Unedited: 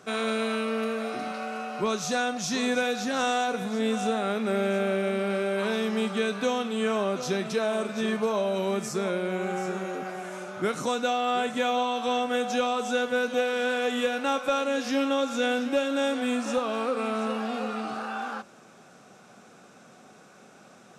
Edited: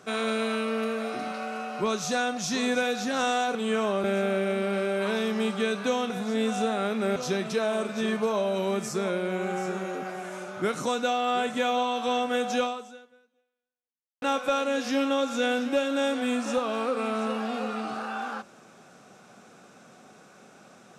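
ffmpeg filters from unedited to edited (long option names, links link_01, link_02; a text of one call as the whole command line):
ffmpeg -i in.wav -filter_complex "[0:a]asplit=6[link_01][link_02][link_03][link_04][link_05][link_06];[link_01]atrim=end=3.552[link_07];[link_02]atrim=start=6.668:end=7.162[link_08];[link_03]atrim=start=4.608:end=6.672[link_09];[link_04]atrim=start=3.548:end=4.612[link_10];[link_05]atrim=start=7.158:end=14.22,asetpts=PTS-STARTPTS,afade=type=out:start_time=5.472:duration=1.59:curve=exp[link_11];[link_06]atrim=start=14.22,asetpts=PTS-STARTPTS,afade=type=in:duration=0.004:curve=hsin[link_12];[link_07][link_08]acrossfade=duration=0.004:curve1=hsin:curve2=hsin[link_13];[link_13][link_09]acrossfade=duration=0.004:curve1=hsin:curve2=hsin[link_14];[link_14][link_10]acrossfade=duration=0.004:curve1=hsin:curve2=hsin[link_15];[link_11][link_12]concat=n=2:v=0:a=1[link_16];[link_15][link_16]acrossfade=duration=0.004:curve1=hsin:curve2=hsin" out.wav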